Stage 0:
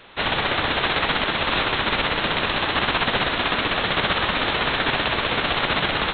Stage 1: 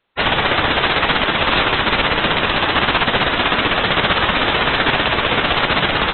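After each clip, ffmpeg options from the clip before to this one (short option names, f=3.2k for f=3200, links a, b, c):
-filter_complex "[0:a]afftdn=nr=32:nf=-29,asplit=2[a][b];[b]alimiter=limit=-14dB:level=0:latency=1:release=400,volume=-1.5dB[c];[a][c]amix=inputs=2:normalize=0,volume=2.5dB"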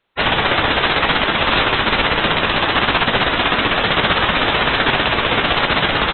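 -filter_complex "[0:a]asplit=2[a][b];[b]adelay=18,volume=-13.5dB[c];[a][c]amix=inputs=2:normalize=0"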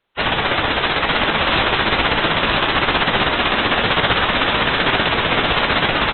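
-af "aecho=1:1:957:0.631,volume=-2dB" -ar 44100 -c:a libvorbis -b:a 96k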